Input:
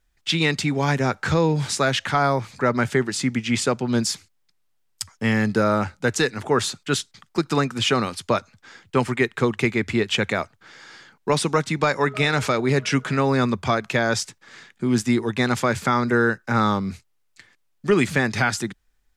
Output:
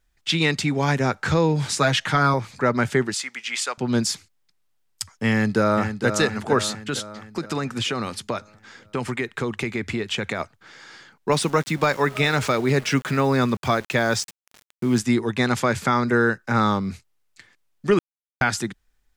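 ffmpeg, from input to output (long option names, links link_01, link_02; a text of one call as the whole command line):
ffmpeg -i in.wav -filter_complex "[0:a]asettb=1/sr,asplit=3[link_01][link_02][link_03];[link_01]atrim=end=1.764[link_04];[link_02]atrim=start=1.76:end=2.34,asetpts=PTS-STARTPTS,afade=type=in:duration=0.004:curve=qsin,afade=type=out:start_time=0.576:duration=0.004:curve=qsin,aecho=1:1:6.4:0.65,atrim=end_sample=25578[link_05];[link_03]atrim=start=2.336[link_06];[link_04][link_05]acrossfade=duration=0.004:curve1=hsin:curve2=qsin[link_07];[link_07][link_06]acrossfade=duration=0.004:curve1=qsin:curve2=hsin,asettb=1/sr,asplit=3[link_08][link_09][link_10];[link_08]atrim=end=3.144[link_11];[link_09]atrim=start=3.14:end=3.78,asetpts=PTS-STARTPTS,afade=type=in:duration=0.004:curve=qsin,afade=type=out:start_time=0.636:duration=0.004:curve=qsin,highpass=1000[link_12];[link_10]atrim=start=3.776[link_13];[link_11][link_12]acrossfade=duration=0.004:curve1=hsin:curve2=qsin[link_14];[link_14][link_13]acrossfade=duration=0.004:curve1=qsin:curve2=hsin,asplit=2[link_15][link_16];[link_16]afade=type=in:start_time=5.31:duration=0.01,afade=type=out:start_time=6.07:duration=0.01,aecho=0:1:460|920|1380|1840|2300|2760|3220:0.398107|0.218959|0.120427|0.0662351|0.0364293|0.0200361|0.0110199[link_17];[link_15][link_17]amix=inputs=2:normalize=0,asplit=3[link_18][link_19][link_20];[link_18]afade=type=out:start_time=6.71:duration=0.02[link_21];[link_19]acompressor=threshold=-21dB:ratio=6:attack=3.2:release=140:knee=1:detection=peak,afade=type=in:start_time=6.71:duration=0.02,afade=type=out:start_time=10.39:duration=0.02[link_22];[link_20]afade=type=in:start_time=10.39:duration=0.02[link_23];[link_21][link_22][link_23]amix=inputs=3:normalize=0,asettb=1/sr,asplit=3[link_24][link_25][link_26];[link_24]atrim=end=11.314[link_27];[link_25]atrim=start=11.31:end=14.98,asetpts=PTS-STARTPTS,afade=type=in:duration=0.004:curve=qsin,afade=type=out:start_time=3.666:duration=0.004:curve=qsin,aeval=exprs='val(0)*gte(abs(val(0)),0.0158)':channel_layout=same[link_28];[link_26]atrim=start=14.976[link_29];[link_27][link_28]acrossfade=duration=0.004:curve1=hsin:curve2=qsin[link_30];[link_30][link_29]acrossfade=duration=0.004:curve1=qsin:curve2=hsin,asplit=3[link_31][link_32][link_33];[link_31]atrim=end=17.99,asetpts=PTS-STARTPTS,afade=type=out:start_time=17.986:duration=0.004:curve=hsin[link_34];[link_32]atrim=start=17.99:end=18.41,asetpts=PTS-STARTPTS,volume=0[link_35];[link_33]atrim=start=18.41,asetpts=PTS-STARTPTS,afade=type=in:duration=0.004:curve=hsin[link_36];[link_34][link_35][link_36]concat=n=3:v=0:a=1" out.wav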